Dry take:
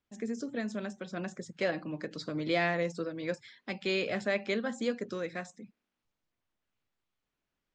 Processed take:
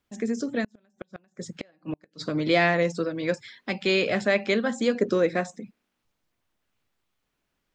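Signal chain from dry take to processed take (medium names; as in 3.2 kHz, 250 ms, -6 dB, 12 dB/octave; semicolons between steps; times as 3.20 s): 0.64–2.22 s: inverted gate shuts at -28 dBFS, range -36 dB; 4.95–5.60 s: peaking EQ 410 Hz +7 dB 2.4 oct; trim +8 dB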